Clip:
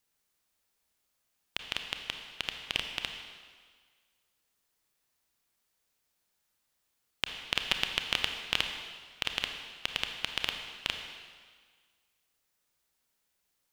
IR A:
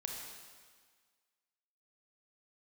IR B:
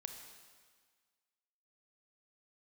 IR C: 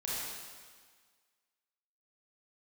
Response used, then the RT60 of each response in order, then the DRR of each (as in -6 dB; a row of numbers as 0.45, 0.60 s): B; 1.6, 1.6, 1.6 s; 0.0, 4.5, -7.5 dB